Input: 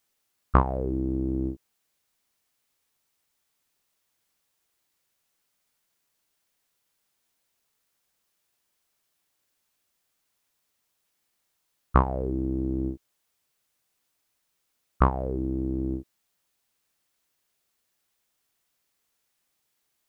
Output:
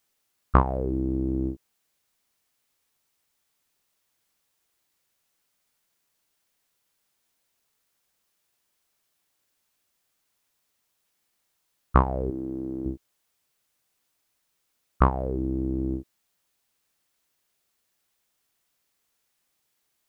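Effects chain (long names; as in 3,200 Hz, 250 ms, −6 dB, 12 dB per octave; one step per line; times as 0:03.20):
0:12.30–0:12.86: high-pass filter 370 Hz 6 dB per octave
level +1 dB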